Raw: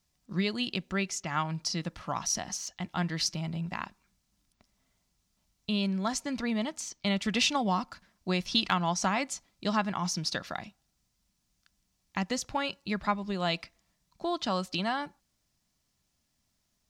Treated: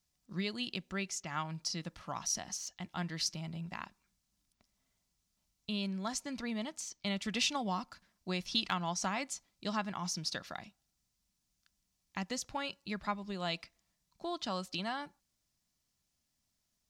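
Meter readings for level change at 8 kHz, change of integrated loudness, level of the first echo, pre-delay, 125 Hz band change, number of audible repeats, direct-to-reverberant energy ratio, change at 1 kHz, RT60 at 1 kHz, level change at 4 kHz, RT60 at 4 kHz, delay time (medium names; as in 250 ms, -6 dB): -4.0 dB, -6.5 dB, no echo, no reverb, -7.5 dB, no echo, no reverb, -7.0 dB, no reverb, -5.0 dB, no reverb, no echo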